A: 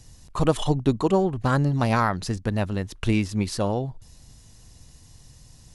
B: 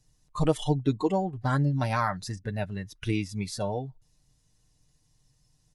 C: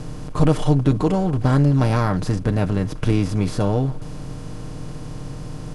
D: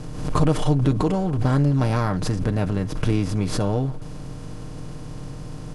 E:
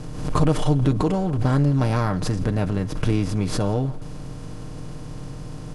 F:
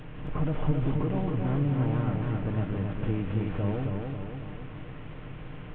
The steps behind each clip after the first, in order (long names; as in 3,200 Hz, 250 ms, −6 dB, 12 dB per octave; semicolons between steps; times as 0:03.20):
noise reduction from a noise print of the clip's start 13 dB; comb filter 6.6 ms, depth 55%; level −5.5 dB
compressor on every frequency bin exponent 0.4; low-shelf EQ 330 Hz +11 dB; level −2 dB
background raised ahead of every attack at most 60 dB per second; level −3 dB
convolution reverb RT60 0.20 s, pre-delay 120 ms, DRR 22.5 dB
linear delta modulator 16 kbit/s, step −34.5 dBFS; feedback echo with a swinging delay time 272 ms, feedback 54%, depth 55 cents, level −3.5 dB; level −9 dB